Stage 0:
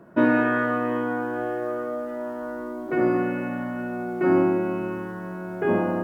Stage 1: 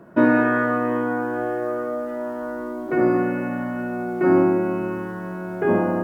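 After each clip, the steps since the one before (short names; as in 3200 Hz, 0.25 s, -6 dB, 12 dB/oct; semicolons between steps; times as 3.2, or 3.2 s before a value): dynamic EQ 3100 Hz, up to -7 dB, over -49 dBFS, Q 2; gain +3 dB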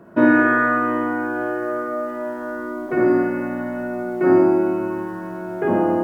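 flutter echo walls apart 9 m, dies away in 0.61 s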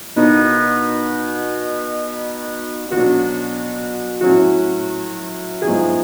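requantised 6-bit, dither triangular; gain +2 dB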